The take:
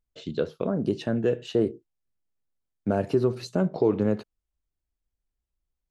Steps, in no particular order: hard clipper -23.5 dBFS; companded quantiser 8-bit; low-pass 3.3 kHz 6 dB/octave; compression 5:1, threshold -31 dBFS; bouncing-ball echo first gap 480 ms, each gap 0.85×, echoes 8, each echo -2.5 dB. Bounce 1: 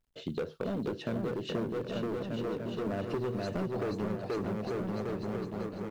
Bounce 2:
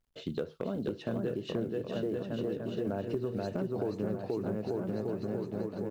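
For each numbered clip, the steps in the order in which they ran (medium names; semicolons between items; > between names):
low-pass > hard clipper > bouncing-ball echo > companded quantiser > compression; low-pass > companded quantiser > bouncing-ball echo > compression > hard clipper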